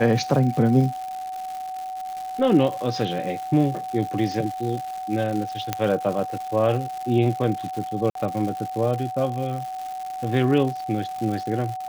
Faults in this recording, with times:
crackle 260/s -30 dBFS
tone 750 Hz -29 dBFS
5.73 pop -7 dBFS
8.1–8.15 gap 53 ms

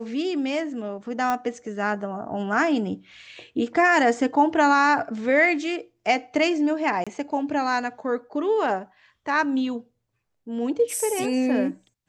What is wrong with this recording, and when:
1.3 pop -12 dBFS
7.04–7.07 gap 26 ms

